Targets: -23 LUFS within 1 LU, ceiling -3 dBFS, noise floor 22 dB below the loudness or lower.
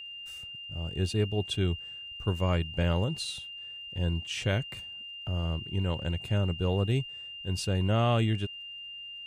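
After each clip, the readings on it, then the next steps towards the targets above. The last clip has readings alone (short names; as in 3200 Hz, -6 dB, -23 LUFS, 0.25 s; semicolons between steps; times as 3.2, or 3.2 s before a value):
ticks 21/s; steady tone 2800 Hz; tone level -40 dBFS; loudness -31.0 LUFS; peak -15.0 dBFS; loudness target -23.0 LUFS
-> de-click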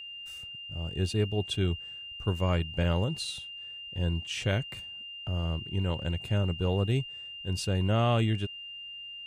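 ticks 0.11/s; steady tone 2800 Hz; tone level -40 dBFS
-> notch 2800 Hz, Q 30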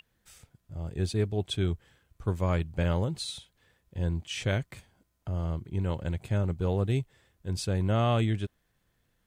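steady tone none; loudness -30.5 LUFS; peak -15.0 dBFS; loudness target -23.0 LUFS
-> gain +7.5 dB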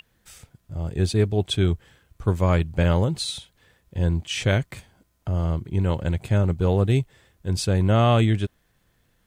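loudness -23.0 LUFS; peak -7.5 dBFS; noise floor -67 dBFS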